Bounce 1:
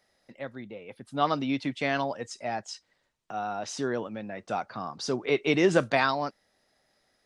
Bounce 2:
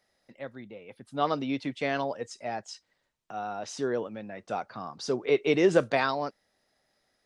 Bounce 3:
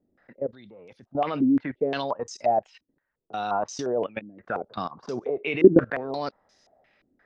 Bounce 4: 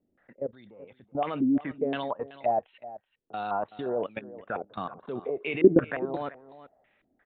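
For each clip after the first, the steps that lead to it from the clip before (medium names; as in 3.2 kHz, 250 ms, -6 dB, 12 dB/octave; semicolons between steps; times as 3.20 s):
dynamic bell 460 Hz, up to +6 dB, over -39 dBFS, Q 2; trim -3 dB
level held to a coarse grid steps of 19 dB; step-sequenced low-pass 5.7 Hz 290–6000 Hz; trim +8.5 dB
delay 378 ms -16 dB; resampled via 8 kHz; trim -3.5 dB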